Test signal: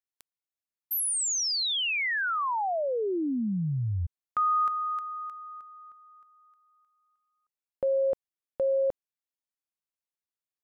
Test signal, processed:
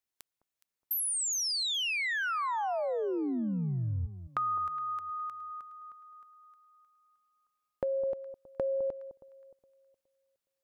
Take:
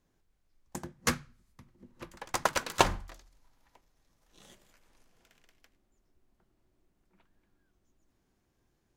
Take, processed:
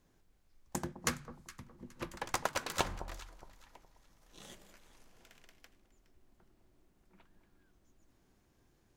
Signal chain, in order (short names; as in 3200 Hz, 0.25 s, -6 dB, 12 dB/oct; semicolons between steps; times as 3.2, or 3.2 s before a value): compressor 4:1, threshold -36 dBFS; on a send: echo with dull and thin repeats by turns 0.208 s, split 1100 Hz, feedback 52%, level -12 dB; on the sum: gain +4 dB